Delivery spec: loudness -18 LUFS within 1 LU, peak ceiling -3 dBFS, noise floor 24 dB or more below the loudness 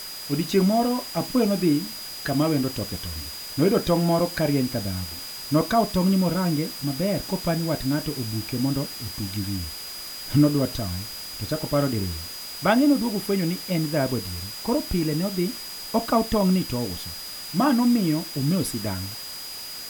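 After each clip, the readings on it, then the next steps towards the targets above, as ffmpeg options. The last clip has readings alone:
steady tone 4900 Hz; tone level -36 dBFS; noise floor -36 dBFS; noise floor target -49 dBFS; loudness -24.5 LUFS; peak -5.0 dBFS; loudness target -18.0 LUFS
-> -af "bandreject=f=4.9k:w=30"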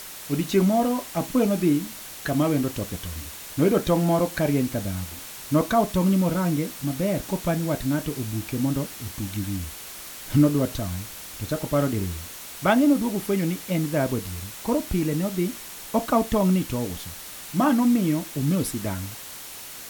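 steady tone none; noise floor -39 dBFS; noise floor target -49 dBFS
-> -af "afftdn=nr=10:nf=-39"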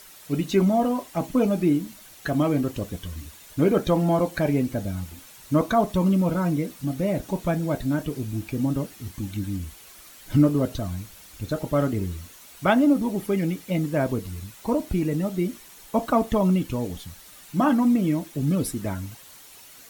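noise floor -48 dBFS; noise floor target -49 dBFS
-> -af "afftdn=nr=6:nf=-48"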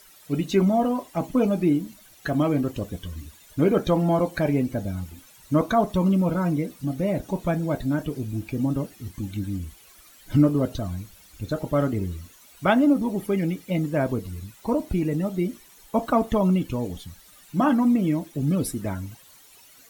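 noise floor -52 dBFS; loudness -24.5 LUFS; peak -5.5 dBFS; loudness target -18.0 LUFS
-> -af "volume=6.5dB,alimiter=limit=-3dB:level=0:latency=1"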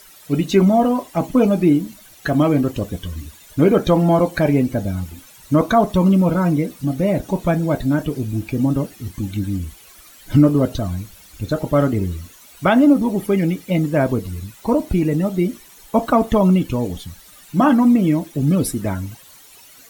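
loudness -18.5 LUFS; peak -3.0 dBFS; noise floor -45 dBFS

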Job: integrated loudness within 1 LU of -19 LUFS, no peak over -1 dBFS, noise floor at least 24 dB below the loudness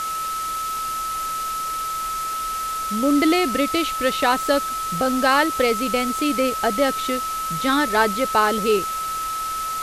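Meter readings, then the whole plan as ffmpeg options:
steady tone 1300 Hz; tone level -24 dBFS; noise floor -27 dBFS; noise floor target -46 dBFS; loudness -21.5 LUFS; peak -5.0 dBFS; loudness target -19.0 LUFS
-> -af "bandreject=f=1.3k:w=30"
-af "afftdn=nr=19:nf=-27"
-af "volume=2.5dB"

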